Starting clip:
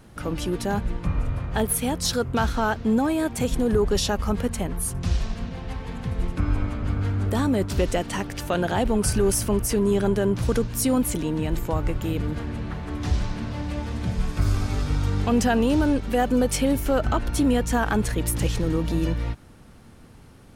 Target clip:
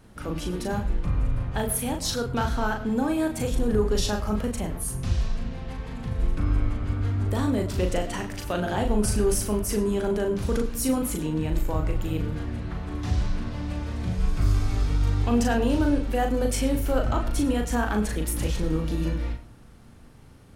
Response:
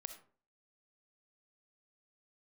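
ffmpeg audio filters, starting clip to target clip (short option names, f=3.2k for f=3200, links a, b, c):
-filter_complex "[0:a]asplit=2[a][b];[1:a]atrim=start_sample=2205,lowshelf=f=160:g=6.5,adelay=38[c];[b][c]afir=irnorm=-1:irlink=0,volume=0dB[d];[a][d]amix=inputs=2:normalize=0,volume=-4.5dB"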